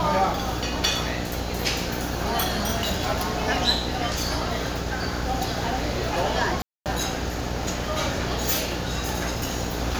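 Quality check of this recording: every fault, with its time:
buzz 60 Hz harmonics 15 -31 dBFS
6.62–6.86 s: dropout 238 ms

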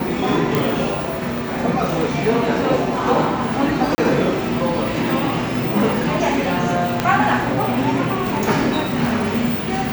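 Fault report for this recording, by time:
0.55 s: pop
3.95–3.98 s: dropout 30 ms
7.00 s: pop -3 dBFS

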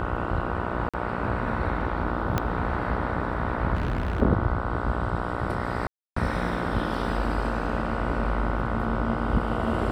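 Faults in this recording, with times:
buzz 60 Hz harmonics 25 -31 dBFS
0.89–0.94 s: dropout 46 ms
2.38 s: pop -10 dBFS
3.74–4.22 s: clipped -22.5 dBFS
5.87–6.16 s: dropout 294 ms

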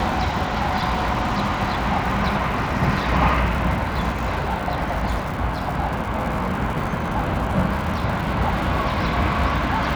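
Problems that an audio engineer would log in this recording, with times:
crackle 210 per s -29 dBFS

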